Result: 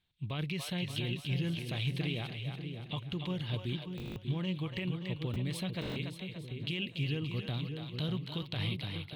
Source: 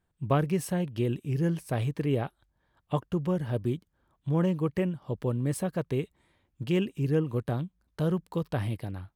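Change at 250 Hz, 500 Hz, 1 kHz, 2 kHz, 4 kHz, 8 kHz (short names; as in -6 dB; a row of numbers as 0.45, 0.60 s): -7.5, -12.0, -11.0, +1.0, +9.0, -7.0 dB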